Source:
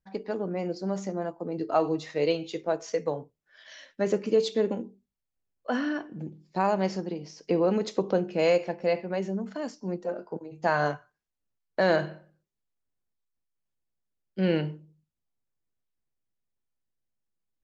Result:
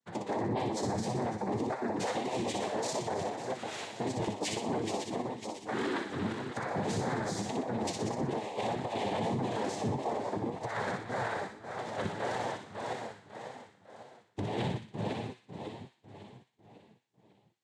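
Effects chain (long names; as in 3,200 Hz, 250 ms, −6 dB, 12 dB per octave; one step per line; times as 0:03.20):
feedback delay that plays each chunk backwards 275 ms, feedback 65%, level −11.5 dB
low-shelf EQ 170 Hz −4 dB
compressor whose output falls as the input rises −29 dBFS, ratio −0.5
cochlear-implant simulation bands 6
flanger 1.7 Hz, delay 7.6 ms, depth 2.8 ms, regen +56%
brickwall limiter −30.5 dBFS, peak gain reduction 11 dB
on a send: delay with a high-pass on its return 61 ms, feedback 47%, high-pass 1,800 Hz, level −4 dB
on the sum: level +6 dB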